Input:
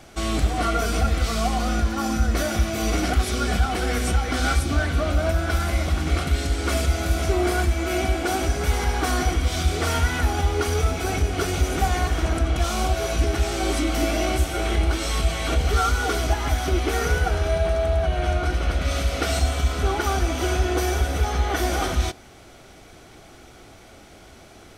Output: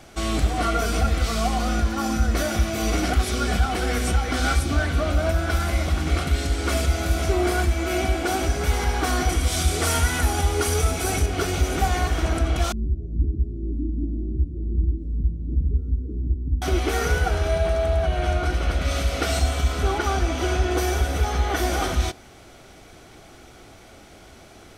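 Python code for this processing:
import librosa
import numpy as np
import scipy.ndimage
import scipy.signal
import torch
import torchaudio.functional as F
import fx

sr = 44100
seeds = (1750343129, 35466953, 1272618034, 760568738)

y = fx.peak_eq(x, sr, hz=10000.0, db=10.0, octaves=1.2, at=(9.29, 11.26))
y = fx.cheby2_lowpass(y, sr, hz=730.0, order=4, stop_db=50, at=(12.72, 16.62))
y = fx.high_shelf(y, sr, hz=11000.0, db=-12.0, at=(19.98, 20.71))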